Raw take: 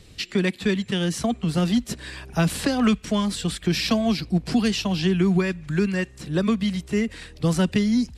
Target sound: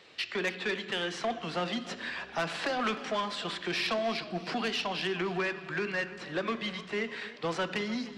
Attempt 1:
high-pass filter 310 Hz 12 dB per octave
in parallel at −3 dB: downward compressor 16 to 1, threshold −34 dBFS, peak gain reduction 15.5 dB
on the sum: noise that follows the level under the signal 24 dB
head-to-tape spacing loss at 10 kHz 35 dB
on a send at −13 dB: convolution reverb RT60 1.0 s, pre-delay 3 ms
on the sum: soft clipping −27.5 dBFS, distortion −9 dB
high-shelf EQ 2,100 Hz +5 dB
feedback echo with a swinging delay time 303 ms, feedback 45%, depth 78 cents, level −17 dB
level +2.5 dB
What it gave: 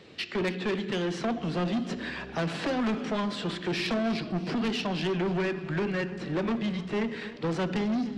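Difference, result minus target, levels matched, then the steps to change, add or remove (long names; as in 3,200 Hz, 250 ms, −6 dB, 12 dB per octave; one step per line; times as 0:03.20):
250 Hz band +5.5 dB
change: high-pass filter 720 Hz 12 dB per octave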